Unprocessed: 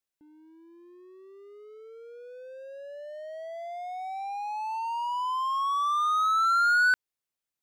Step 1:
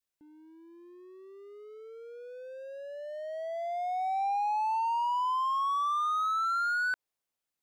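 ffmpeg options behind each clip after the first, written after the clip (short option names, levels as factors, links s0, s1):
-af "adynamicequalizer=threshold=0.01:dfrequency=690:dqfactor=0.82:tfrequency=690:tqfactor=0.82:attack=5:release=100:ratio=0.375:range=3:mode=boostabove:tftype=bell,alimiter=level_in=1.19:limit=0.0631:level=0:latency=1:release=70,volume=0.841"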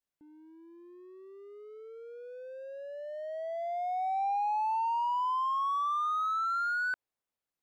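-af "highshelf=f=2700:g=-8"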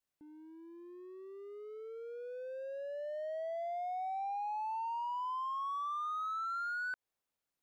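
-af "acompressor=threshold=0.0126:ratio=6,volume=1.12"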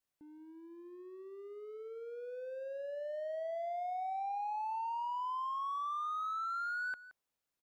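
-af "aecho=1:1:172:0.15"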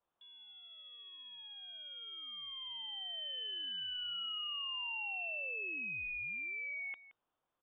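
-af "aexciter=amount=10.5:drive=4.8:freq=2500,lowpass=f=3100:t=q:w=0.5098,lowpass=f=3100:t=q:w=0.6013,lowpass=f=3100:t=q:w=0.9,lowpass=f=3100:t=q:w=2.563,afreqshift=-3700,volume=0.708"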